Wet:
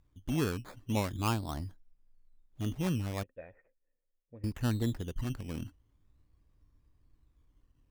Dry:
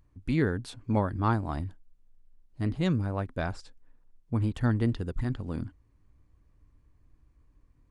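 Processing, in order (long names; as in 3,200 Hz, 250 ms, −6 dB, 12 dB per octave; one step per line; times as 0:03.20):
sample-and-hold swept by an LFO 12×, swing 60% 0.41 Hz
0:03.23–0:04.44: formant resonators in series e
level −5 dB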